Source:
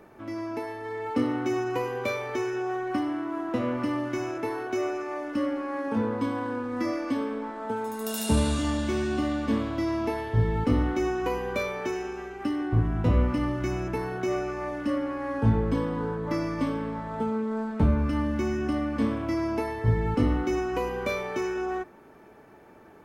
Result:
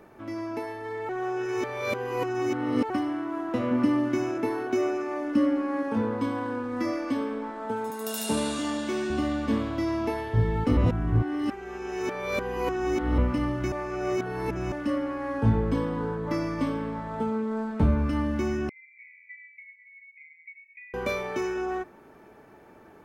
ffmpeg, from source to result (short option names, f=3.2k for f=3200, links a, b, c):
-filter_complex "[0:a]asettb=1/sr,asplit=3[a][b][c];[a]atrim=end=3.714[d];[b]atrim=start=3.71:end=5.83,asetpts=PTS-STARTPTS,afade=t=in:d=0.004:c=qsin,afade=t=out:st=2.116:d=0.004:c=qsin,equalizer=f=240:w=1.5:g=8[e];[c]atrim=start=5.826[f];[d][e]acrossfade=d=0.004:c1=hsin:c2=qsin[g];[g][f]acrossfade=d=0.004:c1=qsin:c2=hsin,asettb=1/sr,asplit=3[h][i][j];[h]atrim=end=7.904[k];[i]atrim=start=7.9:end=9.1,asetpts=PTS-STARTPTS,afade=t=in:d=0.004:c=qsin,afade=t=out:st=1.196:d=0.004:c=qsin,highpass=230[l];[j]atrim=start=9.096[m];[k][l]acrossfade=d=0.004:c1=hsin:c2=qsin[n];[n][m]acrossfade=d=0.004:c1=qsin:c2=hsin,asettb=1/sr,asplit=3[o][p][q];[o]atrim=end=18.694[r];[p]atrim=start=18.69:end=20.94,asetpts=PTS-STARTPTS,afade=t=in:d=0.004:c=qsin,afade=t=out:st=2.246:d=0.004:c=qsin,asuperpass=centerf=2200:order=20:qfactor=4.1[s];[q]atrim=start=20.936[t];[r][s]acrossfade=d=0.004:c1=hsin:c2=qsin[u];[u][t]acrossfade=d=0.004:c1=qsin:c2=hsin,asplit=7[v][w][x][y][z][aa][ab];[v]atrim=end=1.092[ac];[w]atrim=start=1.088:end=2.902,asetpts=PTS-STARTPTS,areverse[ad];[x]atrim=start=2.898:end=10.772[ae];[y]atrim=start=10.768:end=13.182,asetpts=PTS-STARTPTS,areverse[af];[z]atrim=start=13.178:end=13.722[ag];[aa]atrim=start=13.718:end=14.722,asetpts=PTS-STARTPTS,areverse[ah];[ab]atrim=start=14.718[ai];[ac][ad]acrossfade=d=0.004:c1=hsin:c2=hsin[aj];[aj][ae]acrossfade=d=0.004:c1=hsin:c2=hsin[ak];[ak][af]acrossfade=d=0.004:c1=hsin:c2=hsin[al];[al][ag]acrossfade=d=0.004:c1=hsin:c2=hsin[am];[am][ah]acrossfade=d=0.004:c1=hsin:c2=hsin[an];[an][ai]acrossfade=d=0.004:c1=hsin:c2=hsin"